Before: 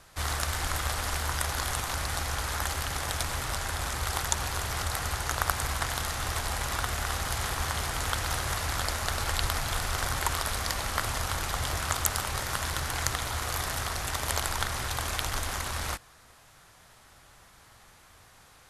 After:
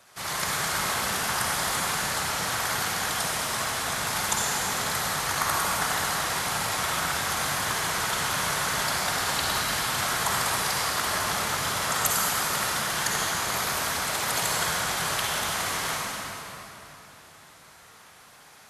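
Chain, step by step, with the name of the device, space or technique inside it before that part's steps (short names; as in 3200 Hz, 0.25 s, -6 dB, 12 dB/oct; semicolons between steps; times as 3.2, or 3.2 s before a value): whispering ghost (whisperiser; HPF 430 Hz 6 dB/oct; reverb RT60 3.3 s, pre-delay 44 ms, DRR -4.5 dB)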